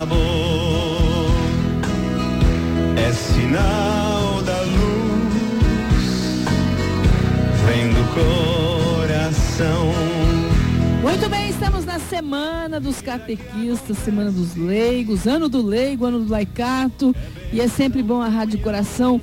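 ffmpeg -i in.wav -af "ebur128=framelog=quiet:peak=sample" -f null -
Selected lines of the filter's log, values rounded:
Integrated loudness:
  I:         -19.3 LUFS
  Threshold: -29.3 LUFS
Loudness range:
  LRA:         3.9 LU
  Threshold: -39.3 LUFS
  LRA low:   -21.8 LUFS
  LRA high:  -17.9 LUFS
Sample peak:
  Peak:       -4.1 dBFS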